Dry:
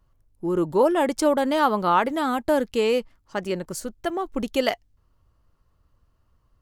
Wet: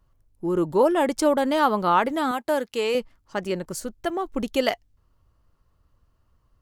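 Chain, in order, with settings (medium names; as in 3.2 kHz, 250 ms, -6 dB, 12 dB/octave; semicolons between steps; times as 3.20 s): 2.31–2.95 s: high-pass 480 Hz 6 dB/octave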